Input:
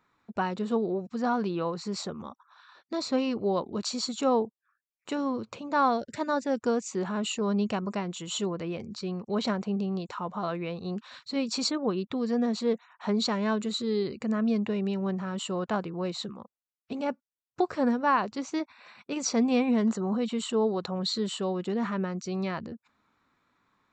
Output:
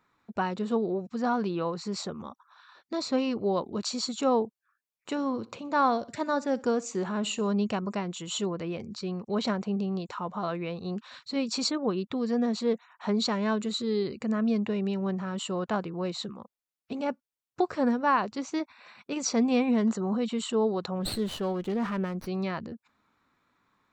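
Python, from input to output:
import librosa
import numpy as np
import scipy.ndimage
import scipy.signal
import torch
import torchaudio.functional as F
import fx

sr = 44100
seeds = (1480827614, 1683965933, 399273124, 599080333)

y = fx.echo_feedback(x, sr, ms=62, feedback_pct=39, wet_db=-21, at=(5.15, 7.52))
y = fx.running_max(y, sr, window=5, at=(20.99, 22.26), fade=0.02)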